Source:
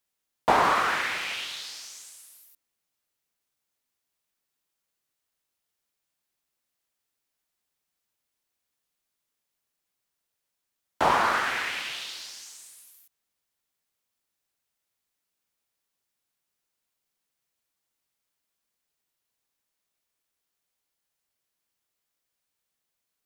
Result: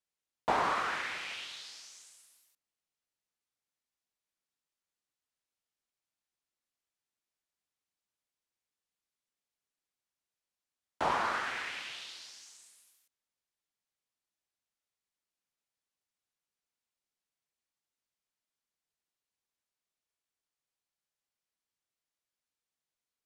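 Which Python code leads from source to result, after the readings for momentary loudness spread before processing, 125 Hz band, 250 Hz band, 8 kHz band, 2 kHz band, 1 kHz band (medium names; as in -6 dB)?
20 LU, -8.5 dB, -8.5 dB, -9.5 dB, -8.5 dB, -8.5 dB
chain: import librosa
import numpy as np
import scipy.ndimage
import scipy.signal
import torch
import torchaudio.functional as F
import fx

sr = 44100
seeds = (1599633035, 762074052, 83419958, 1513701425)

y = scipy.signal.sosfilt(scipy.signal.butter(2, 9300.0, 'lowpass', fs=sr, output='sos'), x)
y = y * 10.0 ** (-8.5 / 20.0)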